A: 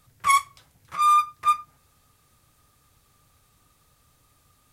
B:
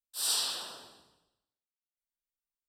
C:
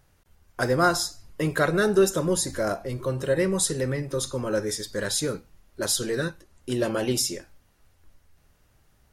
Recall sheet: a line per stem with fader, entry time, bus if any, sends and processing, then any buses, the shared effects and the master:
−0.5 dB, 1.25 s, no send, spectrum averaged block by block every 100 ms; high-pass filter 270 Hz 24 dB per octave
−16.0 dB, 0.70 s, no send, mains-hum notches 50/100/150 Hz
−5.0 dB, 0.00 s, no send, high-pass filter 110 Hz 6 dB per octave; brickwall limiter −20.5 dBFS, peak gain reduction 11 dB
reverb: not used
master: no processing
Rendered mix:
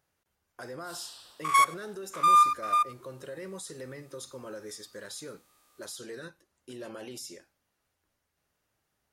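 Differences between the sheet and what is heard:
stem C −5.0 dB → −11.0 dB
master: extra low-shelf EQ 210 Hz −7.5 dB

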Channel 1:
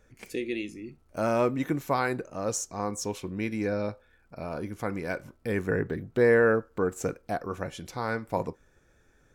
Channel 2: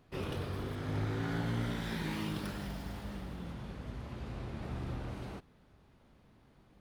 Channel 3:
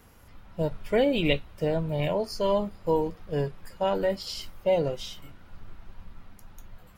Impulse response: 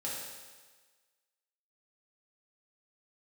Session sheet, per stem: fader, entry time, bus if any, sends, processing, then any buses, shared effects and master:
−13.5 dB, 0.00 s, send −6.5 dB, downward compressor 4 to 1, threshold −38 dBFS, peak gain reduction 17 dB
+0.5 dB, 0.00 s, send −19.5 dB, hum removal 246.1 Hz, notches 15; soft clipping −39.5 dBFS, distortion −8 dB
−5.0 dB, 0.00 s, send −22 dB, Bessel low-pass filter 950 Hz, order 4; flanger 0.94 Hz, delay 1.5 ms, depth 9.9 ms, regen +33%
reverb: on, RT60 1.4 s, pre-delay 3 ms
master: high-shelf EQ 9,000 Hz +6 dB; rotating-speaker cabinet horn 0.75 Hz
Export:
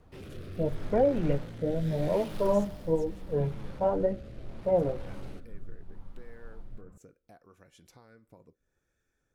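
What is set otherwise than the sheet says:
stem 1: send off
stem 3 −5.0 dB → +4.5 dB

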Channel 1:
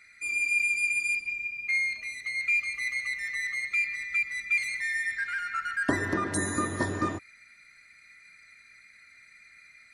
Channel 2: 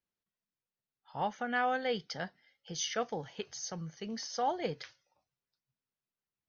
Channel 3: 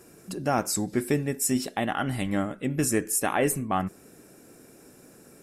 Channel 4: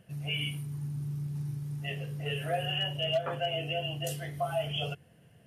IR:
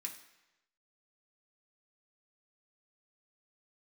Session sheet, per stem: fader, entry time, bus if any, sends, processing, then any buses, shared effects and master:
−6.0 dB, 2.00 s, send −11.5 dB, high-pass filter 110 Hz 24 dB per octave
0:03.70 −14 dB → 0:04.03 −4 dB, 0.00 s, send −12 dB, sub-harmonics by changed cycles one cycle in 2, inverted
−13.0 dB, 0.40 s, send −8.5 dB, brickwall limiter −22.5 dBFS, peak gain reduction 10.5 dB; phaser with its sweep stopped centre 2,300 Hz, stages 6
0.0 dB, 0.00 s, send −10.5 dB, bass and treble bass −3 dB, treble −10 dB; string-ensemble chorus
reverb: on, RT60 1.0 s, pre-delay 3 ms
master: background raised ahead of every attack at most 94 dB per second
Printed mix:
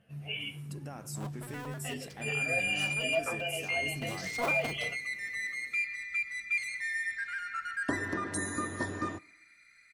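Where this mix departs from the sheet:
stem 1: missing high-pass filter 110 Hz 24 dB per octave
stem 3: missing phaser with its sweep stopped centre 2,300 Hz, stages 6
master: missing background raised ahead of every attack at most 94 dB per second

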